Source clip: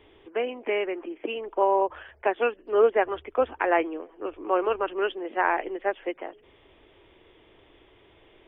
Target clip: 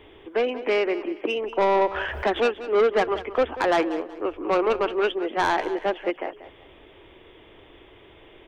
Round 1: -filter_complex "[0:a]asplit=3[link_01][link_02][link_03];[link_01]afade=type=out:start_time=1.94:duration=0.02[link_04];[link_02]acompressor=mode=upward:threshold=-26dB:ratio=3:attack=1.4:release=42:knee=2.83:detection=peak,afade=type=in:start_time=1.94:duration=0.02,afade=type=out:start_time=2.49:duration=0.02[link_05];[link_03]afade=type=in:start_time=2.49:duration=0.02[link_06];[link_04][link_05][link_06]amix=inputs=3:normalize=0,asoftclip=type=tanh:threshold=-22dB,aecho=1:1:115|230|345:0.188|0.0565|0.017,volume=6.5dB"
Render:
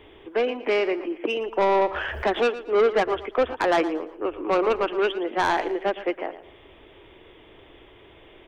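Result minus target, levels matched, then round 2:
echo 72 ms early
-filter_complex "[0:a]asplit=3[link_01][link_02][link_03];[link_01]afade=type=out:start_time=1.94:duration=0.02[link_04];[link_02]acompressor=mode=upward:threshold=-26dB:ratio=3:attack=1.4:release=42:knee=2.83:detection=peak,afade=type=in:start_time=1.94:duration=0.02,afade=type=out:start_time=2.49:duration=0.02[link_05];[link_03]afade=type=in:start_time=2.49:duration=0.02[link_06];[link_04][link_05][link_06]amix=inputs=3:normalize=0,asoftclip=type=tanh:threshold=-22dB,aecho=1:1:187|374|561:0.188|0.0565|0.017,volume=6.5dB"

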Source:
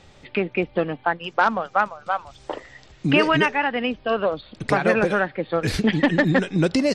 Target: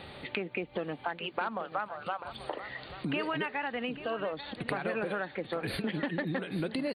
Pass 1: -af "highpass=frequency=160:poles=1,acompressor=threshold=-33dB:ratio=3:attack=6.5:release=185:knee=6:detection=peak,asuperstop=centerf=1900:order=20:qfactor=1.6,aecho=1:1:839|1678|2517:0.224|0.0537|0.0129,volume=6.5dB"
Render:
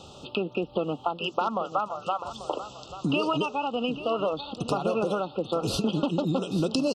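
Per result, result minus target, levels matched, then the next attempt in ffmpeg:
8,000 Hz band +9.5 dB; downward compressor: peak gain reduction −7.5 dB
-af "highpass=frequency=160:poles=1,acompressor=threshold=-33dB:ratio=3:attack=6.5:release=185:knee=6:detection=peak,asuperstop=centerf=6400:order=20:qfactor=1.6,aecho=1:1:839|1678|2517:0.224|0.0537|0.0129,volume=6.5dB"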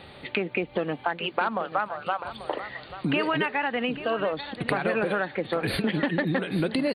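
downward compressor: peak gain reduction −7.5 dB
-af "highpass=frequency=160:poles=1,acompressor=threshold=-44dB:ratio=3:attack=6.5:release=185:knee=6:detection=peak,asuperstop=centerf=6400:order=20:qfactor=1.6,aecho=1:1:839|1678|2517:0.224|0.0537|0.0129,volume=6.5dB"

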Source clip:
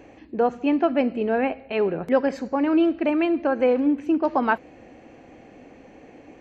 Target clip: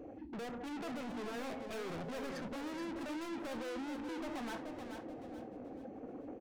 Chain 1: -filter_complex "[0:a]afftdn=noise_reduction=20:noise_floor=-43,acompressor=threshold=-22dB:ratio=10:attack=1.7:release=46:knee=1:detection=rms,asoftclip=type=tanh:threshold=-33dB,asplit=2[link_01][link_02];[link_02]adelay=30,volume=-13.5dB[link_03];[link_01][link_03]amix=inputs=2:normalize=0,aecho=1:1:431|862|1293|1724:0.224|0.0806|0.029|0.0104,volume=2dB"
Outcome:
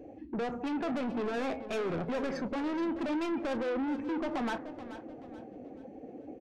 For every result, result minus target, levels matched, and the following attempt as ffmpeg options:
echo-to-direct −6.5 dB; soft clipping: distortion −5 dB
-filter_complex "[0:a]afftdn=noise_reduction=20:noise_floor=-43,acompressor=threshold=-22dB:ratio=10:attack=1.7:release=46:knee=1:detection=rms,asoftclip=type=tanh:threshold=-33dB,asplit=2[link_01][link_02];[link_02]adelay=30,volume=-13.5dB[link_03];[link_01][link_03]amix=inputs=2:normalize=0,aecho=1:1:431|862|1293|1724:0.473|0.17|0.0613|0.0221,volume=2dB"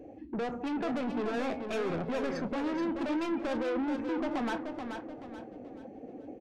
soft clipping: distortion −5 dB
-filter_complex "[0:a]afftdn=noise_reduction=20:noise_floor=-43,acompressor=threshold=-22dB:ratio=10:attack=1.7:release=46:knee=1:detection=rms,asoftclip=type=tanh:threshold=-44dB,asplit=2[link_01][link_02];[link_02]adelay=30,volume=-13.5dB[link_03];[link_01][link_03]amix=inputs=2:normalize=0,aecho=1:1:431|862|1293|1724:0.473|0.17|0.0613|0.0221,volume=2dB"

